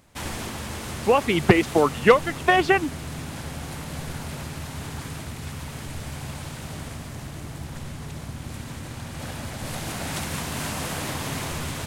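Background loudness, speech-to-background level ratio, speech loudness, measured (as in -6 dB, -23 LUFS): -33.0 LUFS, 12.5 dB, -20.5 LUFS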